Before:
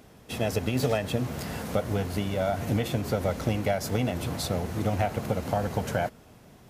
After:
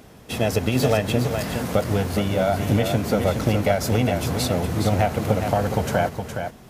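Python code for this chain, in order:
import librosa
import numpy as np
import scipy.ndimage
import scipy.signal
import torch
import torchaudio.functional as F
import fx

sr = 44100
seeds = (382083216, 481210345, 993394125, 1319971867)

y = x + 10.0 ** (-7.0 / 20.0) * np.pad(x, (int(415 * sr / 1000.0), 0))[:len(x)]
y = F.gain(torch.from_numpy(y), 6.0).numpy()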